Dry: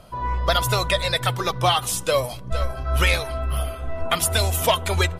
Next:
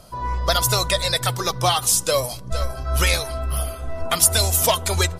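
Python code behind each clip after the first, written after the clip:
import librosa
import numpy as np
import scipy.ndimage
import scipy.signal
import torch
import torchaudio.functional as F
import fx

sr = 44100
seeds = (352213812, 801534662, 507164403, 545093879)

y = fx.high_shelf_res(x, sr, hz=3900.0, db=7.0, q=1.5)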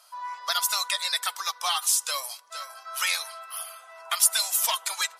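y = scipy.signal.sosfilt(scipy.signal.butter(4, 930.0, 'highpass', fs=sr, output='sos'), x)
y = F.gain(torch.from_numpy(y), -4.5).numpy()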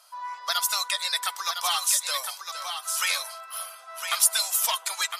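y = x + 10.0 ** (-7.0 / 20.0) * np.pad(x, (int(1008 * sr / 1000.0), 0))[:len(x)]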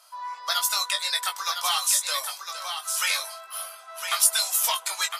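y = fx.doubler(x, sr, ms=20.0, db=-6.0)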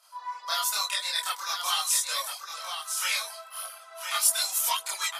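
y = fx.chorus_voices(x, sr, voices=2, hz=0.41, base_ms=28, depth_ms=3.7, mix_pct=60)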